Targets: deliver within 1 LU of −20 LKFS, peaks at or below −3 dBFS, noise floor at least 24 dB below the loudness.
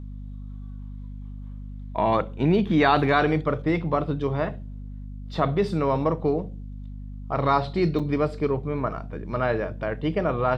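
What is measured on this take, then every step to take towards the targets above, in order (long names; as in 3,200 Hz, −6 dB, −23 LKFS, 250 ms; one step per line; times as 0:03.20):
number of dropouts 1; longest dropout 5.7 ms; mains hum 50 Hz; hum harmonics up to 250 Hz; level of the hum −34 dBFS; integrated loudness −24.5 LKFS; sample peak −5.5 dBFS; target loudness −20.0 LKFS
→ repair the gap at 0:07.99, 5.7 ms
mains-hum notches 50/100/150/200/250 Hz
level +4.5 dB
brickwall limiter −3 dBFS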